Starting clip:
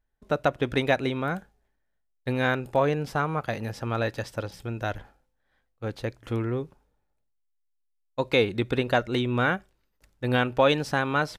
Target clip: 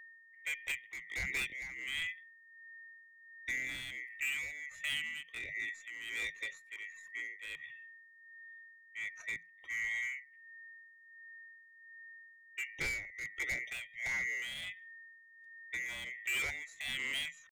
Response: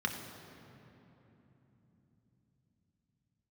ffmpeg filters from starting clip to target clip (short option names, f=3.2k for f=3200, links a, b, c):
-filter_complex "[0:a]afftfilt=real='real(if(lt(b,920),b+92*(1-2*mod(floor(b/92),2)),b),0)':imag='imag(if(lt(b,920),b+92*(1-2*mod(floor(b/92),2)),b),0)':win_size=2048:overlap=0.75,afftdn=nr=14:nf=-46,highshelf=f=5.7k:g=-2.5,acrossover=split=220|3000[a][b][c];[b]acompressor=threshold=-24dB:ratio=3[d];[a][d][c]amix=inputs=3:normalize=0,aeval=exprs='val(0)+0.00708*sin(2*PI*2000*n/s)':c=same,asoftclip=type=tanh:threshold=-20.5dB,atempo=0.65,volume=25.5dB,asoftclip=hard,volume=-25.5dB,tremolo=f=1.4:d=0.64,afreqshift=-170,volume=-6.5dB"